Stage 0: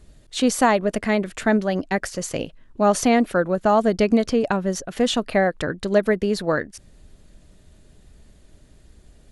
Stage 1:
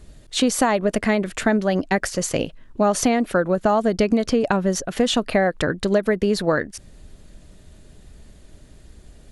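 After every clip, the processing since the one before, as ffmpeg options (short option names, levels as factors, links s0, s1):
-af "acompressor=threshold=0.112:ratio=6,volume=1.68"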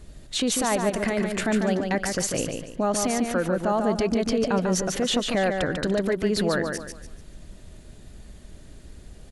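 -filter_complex "[0:a]alimiter=limit=0.158:level=0:latency=1:release=56,asplit=2[s0][s1];[s1]aecho=0:1:145|290|435|580:0.562|0.186|0.0612|0.0202[s2];[s0][s2]amix=inputs=2:normalize=0"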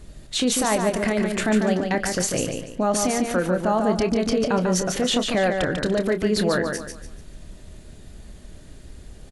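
-filter_complex "[0:a]asplit=2[s0][s1];[s1]adelay=28,volume=0.299[s2];[s0][s2]amix=inputs=2:normalize=0,volume=1.26"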